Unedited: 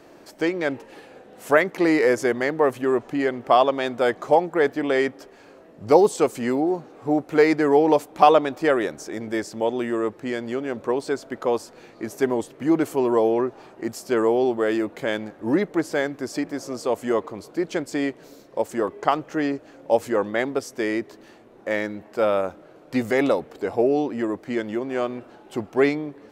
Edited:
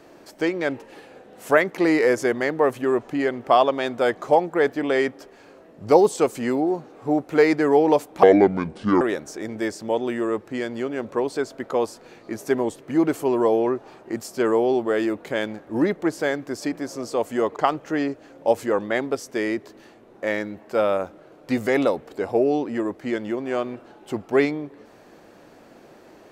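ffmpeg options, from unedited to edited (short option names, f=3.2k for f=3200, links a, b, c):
-filter_complex "[0:a]asplit=4[a][b][c][d];[a]atrim=end=8.234[e];[b]atrim=start=8.23:end=8.73,asetpts=PTS-STARTPTS,asetrate=28224,aresample=44100,atrim=end_sample=34453,asetpts=PTS-STARTPTS[f];[c]atrim=start=8.726:end=17.282[g];[d]atrim=start=18.998[h];[e][f]acrossfade=d=0.004:c1=hsin:c2=hsin[i];[i][g]acrossfade=d=0.004:c1=hsin:c2=hsin[j];[j][h]acrossfade=d=0.004:c1=hsin:c2=hsin"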